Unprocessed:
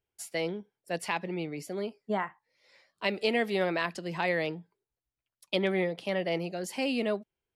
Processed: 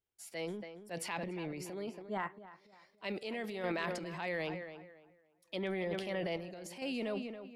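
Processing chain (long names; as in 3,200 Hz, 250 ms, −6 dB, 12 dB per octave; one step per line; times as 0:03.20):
tape delay 281 ms, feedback 30%, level −11 dB, low-pass 2,600 Hz
transient designer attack −4 dB, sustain +9 dB
sample-and-hold tremolo 2.2 Hz
level −6.5 dB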